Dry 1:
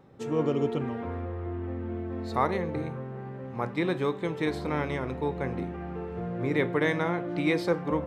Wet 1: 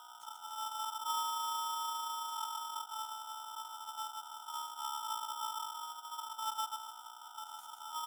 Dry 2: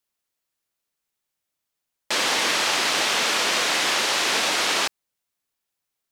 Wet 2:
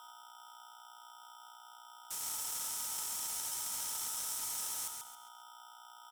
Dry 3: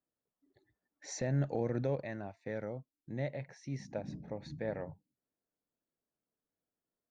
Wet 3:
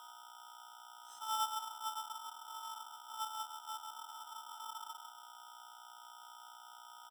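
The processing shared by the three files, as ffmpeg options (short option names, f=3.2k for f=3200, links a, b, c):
-af "highpass=42,bandreject=f=60:t=h:w=6,bandreject=f=120:t=h:w=6,afftfilt=real='re*(1-between(b*sr/4096,150,6100))':imag='im*(1-between(b*sr/4096,150,6100))':win_size=4096:overlap=0.75,equalizer=f=580:w=7.3:g=4.5,aeval=exprs='val(0)+0.00178*(sin(2*PI*60*n/s)+sin(2*PI*2*60*n/s)/2+sin(2*PI*3*60*n/s)/3+sin(2*PI*4*60*n/s)/4+sin(2*PI*5*60*n/s)/5)':c=same,equalizer=f=5.3k:w=0.54:g=-13.5,flanger=delay=9:depth=2.6:regen=-76:speed=1.2:shape=triangular,aecho=1:1:3:0.47,afreqshift=92,aecho=1:1:136|272|408|544:0.562|0.202|0.0729|0.0262,aeval=exprs='val(0)*sgn(sin(2*PI*1100*n/s))':c=same,volume=6dB"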